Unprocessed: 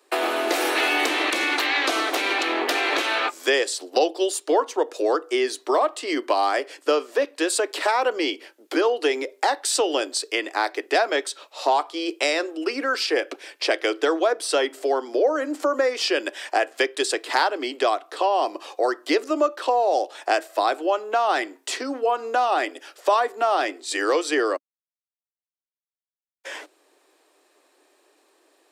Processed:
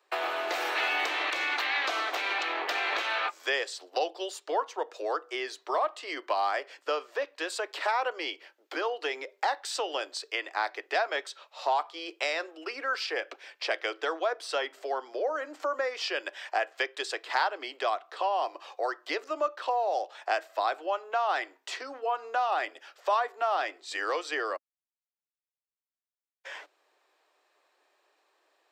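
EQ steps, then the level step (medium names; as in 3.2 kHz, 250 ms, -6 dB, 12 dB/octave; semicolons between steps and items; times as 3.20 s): high-pass 670 Hz 12 dB/octave; treble shelf 4 kHz -6.5 dB; peaking EQ 10 kHz -12 dB 0.57 oct; -4.5 dB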